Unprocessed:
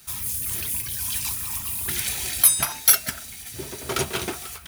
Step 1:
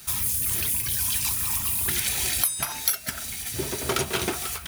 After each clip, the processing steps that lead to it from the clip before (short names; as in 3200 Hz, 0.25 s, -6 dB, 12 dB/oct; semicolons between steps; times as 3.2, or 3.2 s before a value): compressor 8:1, threshold -27 dBFS, peak gain reduction 16.5 dB; gain +5.5 dB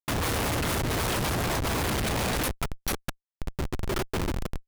Schmitt trigger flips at -21.5 dBFS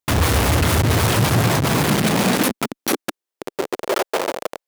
high-pass sweep 67 Hz -> 550 Hz, 0.46–4.02; gain +8.5 dB